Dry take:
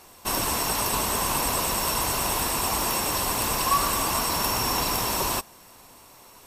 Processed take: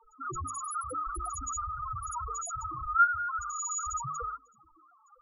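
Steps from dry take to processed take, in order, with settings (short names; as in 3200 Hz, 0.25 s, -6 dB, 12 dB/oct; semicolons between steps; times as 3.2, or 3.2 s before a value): loudest bins only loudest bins 1; varispeed +24%; notches 50/100/150/200/250/300/350/400/450 Hz; gain +7 dB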